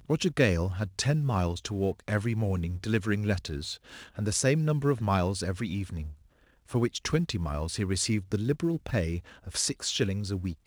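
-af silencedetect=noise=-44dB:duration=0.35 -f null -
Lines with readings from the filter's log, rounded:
silence_start: 6.13
silence_end: 6.70 | silence_duration: 0.57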